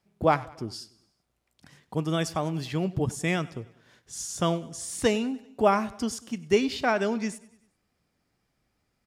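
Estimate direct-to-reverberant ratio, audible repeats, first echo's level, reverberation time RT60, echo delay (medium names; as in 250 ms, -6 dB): no reverb, 3, -21.0 dB, no reverb, 97 ms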